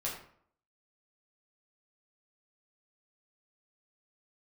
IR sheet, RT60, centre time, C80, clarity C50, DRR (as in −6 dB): 0.60 s, 35 ms, 8.0 dB, 5.0 dB, −5.5 dB